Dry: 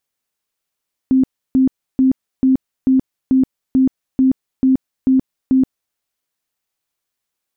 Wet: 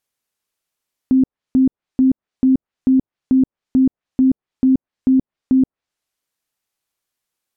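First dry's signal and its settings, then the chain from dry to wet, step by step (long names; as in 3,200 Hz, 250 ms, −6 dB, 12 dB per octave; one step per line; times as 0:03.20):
tone bursts 262 Hz, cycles 33, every 0.44 s, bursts 11, −9 dBFS
treble cut that deepens with the level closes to 630 Hz, closed at −13 dBFS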